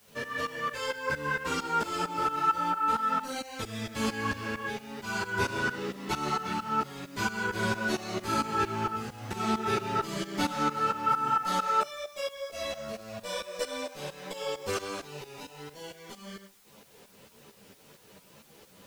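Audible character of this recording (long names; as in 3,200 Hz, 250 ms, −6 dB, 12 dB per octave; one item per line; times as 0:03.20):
tremolo saw up 4.4 Hz, depth 90%
a quantiser's noise floor 10 bits, dither triangular
a shimmering, thickened sound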